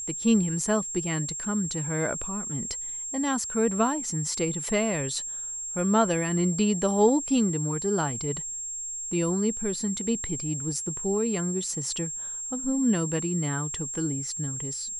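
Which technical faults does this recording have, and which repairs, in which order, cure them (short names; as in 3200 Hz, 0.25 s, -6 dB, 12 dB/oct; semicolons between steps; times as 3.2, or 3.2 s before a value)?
tone 7500 Hz -32 dBFS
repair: notch 7500 Hz, Q 30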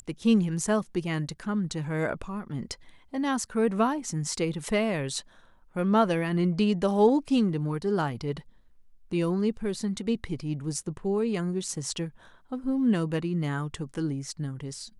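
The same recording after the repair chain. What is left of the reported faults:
none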